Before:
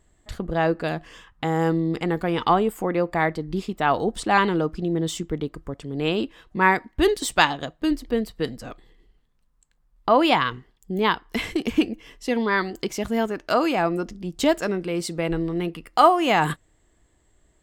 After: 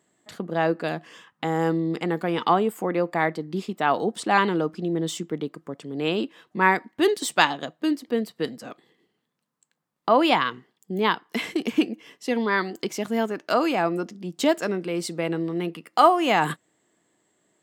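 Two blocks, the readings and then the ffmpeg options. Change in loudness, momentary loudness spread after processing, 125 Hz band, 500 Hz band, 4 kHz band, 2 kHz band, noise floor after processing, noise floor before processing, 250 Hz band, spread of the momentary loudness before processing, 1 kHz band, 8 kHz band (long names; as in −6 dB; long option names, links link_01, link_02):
−1.0 dB, 11 LU, −3.5 dB, −1.0 dB, −1.0 dB, −1.0 dB, −77 dBFS, −64 dBFS, −1.5 dB, 11 LU, −1.0 dB, −1.0 dB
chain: -af "highpass=frequency=160:width=0.5412,highpass=frequency=160:width=1.3066,volume=-1dB"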